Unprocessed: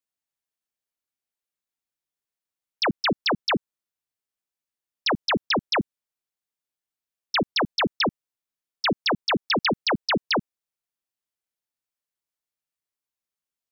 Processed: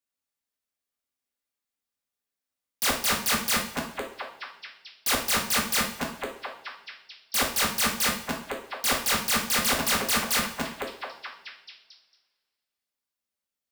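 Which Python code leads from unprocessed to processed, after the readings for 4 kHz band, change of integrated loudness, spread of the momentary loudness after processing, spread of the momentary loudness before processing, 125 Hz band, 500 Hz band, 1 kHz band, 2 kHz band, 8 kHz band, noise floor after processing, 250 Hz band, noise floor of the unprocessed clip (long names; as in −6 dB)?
−1.0 dB, −0.5 dB, 18 LU, 3 LU, −4.5 dB, −5.5 dB, −2.0 dB, −0.5 dB, can't be measured, below −85 dBFS, −5.5 dB, below −85 dBFS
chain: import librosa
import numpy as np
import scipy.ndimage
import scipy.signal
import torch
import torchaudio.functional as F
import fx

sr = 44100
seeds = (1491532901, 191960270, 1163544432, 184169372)

y = fx.echo_stepped(x, sr, ms=228, hz=300.0, octaves=0.7, feedback_pct=70, wet_db=-5)
y = (np.mod(10.0 ** (20.5 / 20.0) * y + 1.0, 2.0) - 1.0) / 10.0 ** (20.5 / 20.0)
y = fx.rev_double_slope(y, sr, seeds[0], early_s=0.48, late_s=1.9, knee_db=-20, drr_db=-1.0)
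y = y * 10.0 ** (-2.0 / 20.0)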